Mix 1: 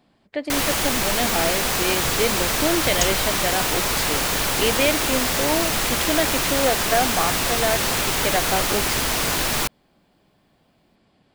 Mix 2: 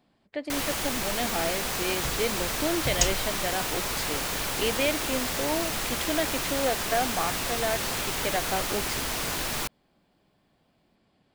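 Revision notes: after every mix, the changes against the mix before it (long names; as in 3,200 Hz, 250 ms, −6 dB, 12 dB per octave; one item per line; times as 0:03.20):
speech −6.0 dB
first sound −8.0 dB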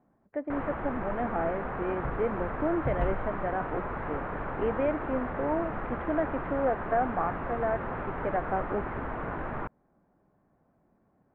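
master: add inverse Chebyshev low-pass filter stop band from 5,000 Hz, stop band 60 dB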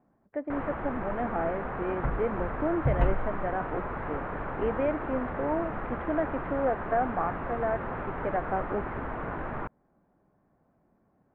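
second sound +6.0 dB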